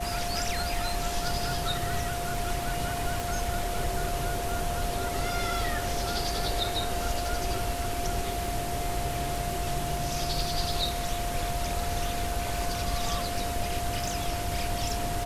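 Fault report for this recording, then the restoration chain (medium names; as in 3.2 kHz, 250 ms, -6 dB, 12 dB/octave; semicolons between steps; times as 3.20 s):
crackle 54 per s -36 dBFS
whine 700 Hz -33 dBFS
3.20 s: pop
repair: de-click; band-stop 700 Hz, Q 30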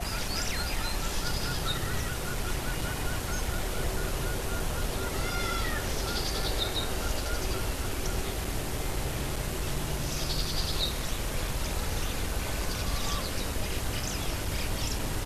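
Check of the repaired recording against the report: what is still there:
3.20 s: pop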